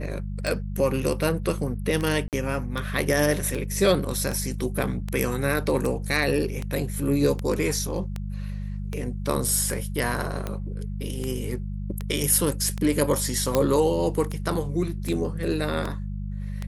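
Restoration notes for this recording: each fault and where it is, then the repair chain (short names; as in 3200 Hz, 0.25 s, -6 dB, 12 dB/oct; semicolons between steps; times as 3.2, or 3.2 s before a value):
hum 50 Hz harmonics 4 -31 dBFS
tick 78 rpm
2.28–2.33 gap 48 ms
13.55 pop -7 dBFS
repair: de-click; de-hum 50 Hz, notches 4; interpolate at 2.28, 48 ms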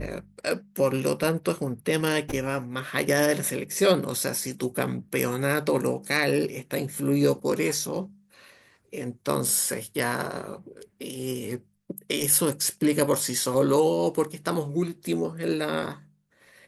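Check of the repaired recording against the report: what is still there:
none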